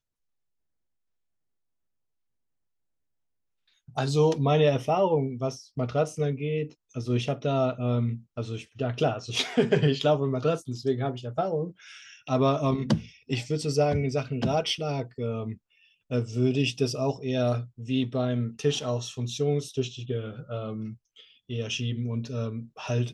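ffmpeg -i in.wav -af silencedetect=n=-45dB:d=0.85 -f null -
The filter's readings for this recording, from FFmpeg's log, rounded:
silence_start: 0.00
silence_end: 3.88 | silence_duration: 3.88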